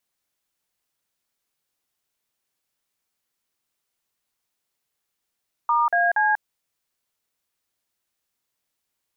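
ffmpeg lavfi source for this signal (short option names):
-f lavfi -i "aevalsrc='0.106*clip(min(mod(t,0.236),0.191-mod(t,0.236))/0.002,0,1)*(eq(floor(t/0.236),0)*(sin(2*PI*941*mod(t,0.236))+sin(2*PI*1209*mod(t,0.236)))+eq(floor(t/0.236),1)*(sin(2*PI*697*mod(t,0.236))+sin(2*PI*1633*mod(t,0.236)))+eq(floor(t/0.236),2)*(sin(2*PI*852*mod(t,0.236))+sin(2*PI*1633*mod(t,0.236))))':d=0.708:s=44100"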